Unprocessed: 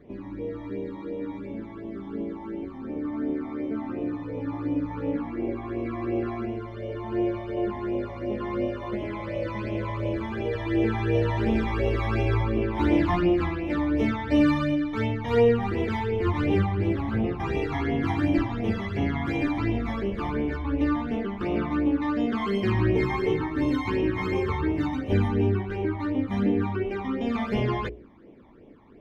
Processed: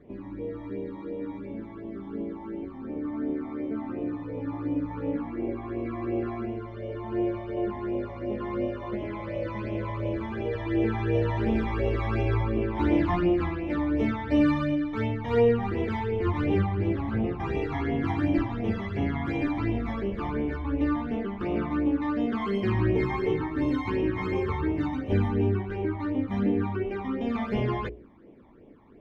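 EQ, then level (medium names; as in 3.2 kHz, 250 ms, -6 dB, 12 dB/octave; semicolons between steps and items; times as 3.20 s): treble shelf 4 kHz -8 dB; -1.5 dB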